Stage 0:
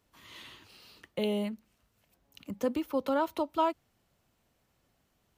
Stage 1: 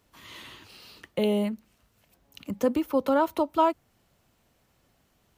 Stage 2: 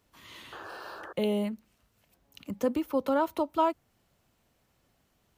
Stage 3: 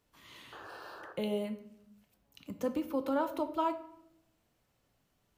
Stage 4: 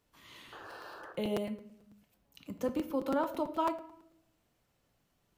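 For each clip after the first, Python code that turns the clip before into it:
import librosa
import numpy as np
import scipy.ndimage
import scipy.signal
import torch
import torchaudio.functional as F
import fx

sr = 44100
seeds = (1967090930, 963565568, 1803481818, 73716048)

y1 = fx.dynamic_eq(x, sr, hz=3700.0, q=0.76, threshold_db=-51.0, ratio=4.0, max_db=-4)
y1 = y1 * librosa.db_to_amplitude(6.0)
y2 = fx.spec_paint(y1, sr, seeds[0], shape='noise', start_s=0.52, length_s=0.61, low_hz=300.0, high_hz=1800.0, level_db=-40.0)
y2 = y2 * librosa.db_to_amplitude(-3.5)
y3 = fx.room_shoebox(y2, sr, seeds[1], volume_m3=190.0, walls='mixed', distance_m=0.37)
y3 = y3 * librosa.db_to_amplitude(-5.5)
y4 = fx.buffer_crackle(y3, sr, first_s=0.48, period_s=0.11, block=256, kind='repeat')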